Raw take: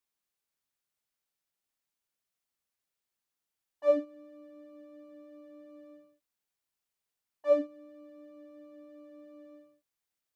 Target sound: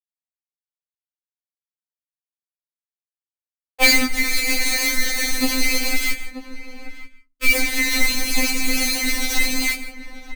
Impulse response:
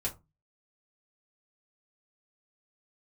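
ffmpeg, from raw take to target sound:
-filter_complex "[0:a]asettb=1/sr,asplit=3[link_01][link_02][link_03];[link_01]atrim=end=4.034[link_04];[link_02]atrim=start=4.03:end=5.44,asetpts=PTS-STARTPTS,afade=type=in:duration=0.004:curve=qsin,afade=type=out:start_time=1.406:duration=0.004:curve=qsin,highpass=340[link_05];[link_03]atrim=start=5.436[link_06];[link_04][link_05]acrossfade=duration=0.004:curve1=hsin:curve2=qsin[link_07];[link_07][link_06]acrossfade=duration=0.004:curve1=qsin:curve2=hsin,acompressor=threshold=-49dB:ratio=3,acrusher=bits=9:mix=0:aa=0.000001,flanger=delay=19.5:depth=5.4:speed=0.73,aeval=exprs='0.0141*sin(PI/2*7.08*val(0)/0.0141)':channel_layout=same,asettb=1/sr,asplit=3[link_08][link_09][link_10];[link_08]atrim=end=5.944[link_11];[link_09]atrim=start=5.94:end=7.56,asetpts=PTS-STARTPTS,afade=type=in:duration=0.004:curve=qsin,afade=type=out:start_time=1.616:duration=0.004:curve=qsin,asuperstop=centerf=720:order=4:qfactor=0.84[link_12];[link_10]atrim=start=7.556[link_13];[link_11][link_12]acrossfade=duration=0.004:curve1=hsin:curve2=qsin[link_14];[link_14][link_13]acrossfade=duration=0.004:curve1=qsin:curve2=hsin,asplit=2[link_15][link_16];[link_16]adelay=932.9,volume=-14dB,highshelf=frequency=4000:gain=-21[link_17];[link_15][link_17]amix=inputs=2:normalize=0,asplit=2[link_18][link_19];[1:a]atrim=start_sample=2205,adelay=143[link_20];[link_19][link_20]afir=irnorm=-1:irlink=0,volume=-18dB[link_21];[link_18][link_21]amix=inputs=2:normalize=0,alimiter=level_in=36dB:limit=-1dB:release=50:level=0:latency=1,afftfilt=real='re*3.46*eq(mod(b,12),0)':imag='im*3.46*eq(mod(b,12),0)':win_size=2048:overlap=0.75,volume=-5dB"

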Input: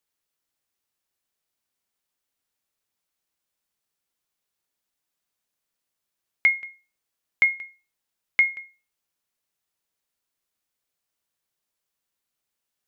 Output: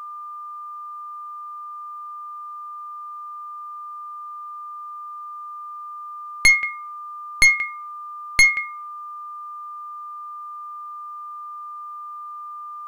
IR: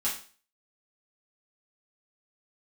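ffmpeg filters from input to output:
-af "apsyclip=13.5dB,aeval=exprs='val(0)+0.0282*sin(2*PI*1200*n/s)':channel_layout=same,aeval=exprs='1.12*(cos(1*acos(clip(val(0)/1.12,-1,1)))-cos(1*PI/2))+0.355*(cos(2*acos(clip(val(0)/1.12,-1,1)))-cos(2*PI/2))+0.0251*(cos(4*acos(clip(val(0)/1.12,-1,1)))-cos(4*PI/2))+0.316*(cos(5*acos(clip(val(0)/1.12,-1,1)))-cos(5*PI/2))+0.0708*(cos(7*acos(clip(val(0)/1.12,-1,1)))-cos(7*PI/2))':channel_layout=same,volume=-7dB"

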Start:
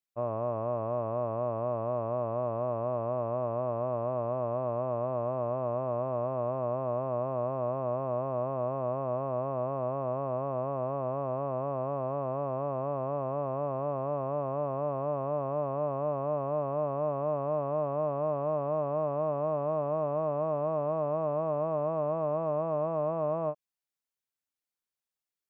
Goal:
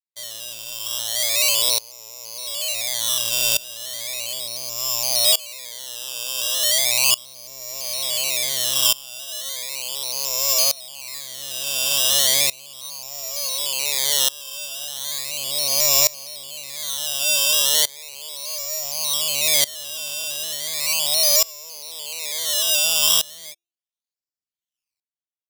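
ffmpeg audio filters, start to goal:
ffmpeg -i in.wav -filter_complex "[0:a]equalizer=frequency=1400:width_type=o:width=2.9:gain=14,bandreject=frequency=343.5:width_type=h:width=4,bandreject=frequency=687:width_type=h:width=4,asplit=2[link_01][link_02];[link_02]alimiter=limit=-22.5dB:level=0:latency=1:release=37,volume=0.5dB[link_03];[link_01][link_03]amix=inputs=2:normalize=0,aphaser=in_gain=1:out_gain=1:delay=2.2:decay=0.55:speed=0.25:type=sinusoidal,adynamicsmooth=sensitivity=2:basefreq=700,aresample=16000,asoftclip=type=tanh:threshold=-11dB,aresample=44100,acrusher=samples=14:mix=1:aa=0.000001:lfo=1:lforange=14:lforate=0.36,aexciter=amount=12.6:drive=6.5:freq=2300,aeval=exprs='val(0)*pow(10,-23*if(lt(mod(-0.56*n/s,1),2*abs(-0.56)/1000),1-mod(-0.56*n/s,1)/(2*abs(-0.56)/1000),(mod(-0.56*n/s,1)-2*abs(-0.56)/1000)/(1-2*abs(-0.56)/1000))/20)':channel_layout=same,volume=-10.5dB" out.wav

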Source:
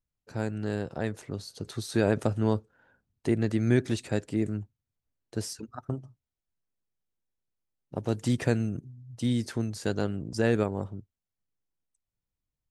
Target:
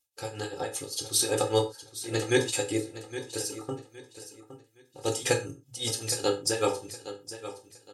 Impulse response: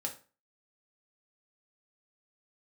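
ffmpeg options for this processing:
-filter_complex "[0:a]highpass=frequency=360:poles=1,aecho=1:1:2.4:0.89,atempo=1.6,aexciter=amount=1.8:drive=9:freq=2600,tremolo=f=5.1:d=0.89,aecho=1:1:815|1630|2445:0.224|0.0649|0.0188[link_01];[1:a]atrim=start_sample=2205,atrim=end_sample=6174[link_02];[link_01][link_02]afir=irnorm=-1:irlink=0,volume=5dB" -ar 44100 -c:a libmp3lame -b:a 64k

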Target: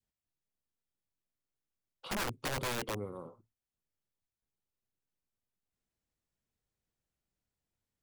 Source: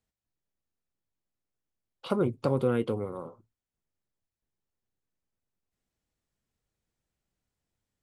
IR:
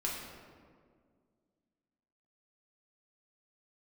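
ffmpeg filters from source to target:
-af "adynamicequalizer=threshold=0.01:dfrequency=800:dqfactor=0.91:tfrequency=800:tqfactor=0.91:attack=5:release=100:ratio=0.375:range=2:mode=cutabove:tftype=bell,aeval=exprs='(mod(16.8*val(0)+1,2)-1)/16.8':channel_layout=same,volume=-5dB"

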